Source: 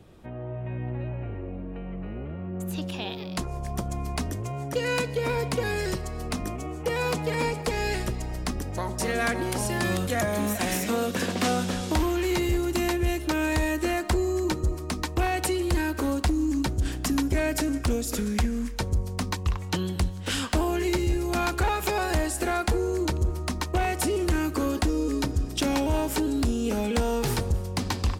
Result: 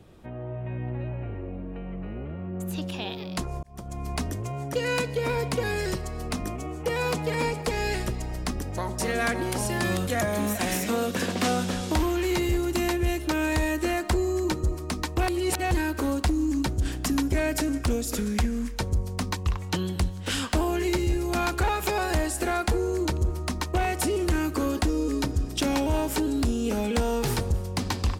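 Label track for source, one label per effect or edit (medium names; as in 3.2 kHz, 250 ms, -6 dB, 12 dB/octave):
3.630000	4.130000	fade in
15.280000	15.710000	reverse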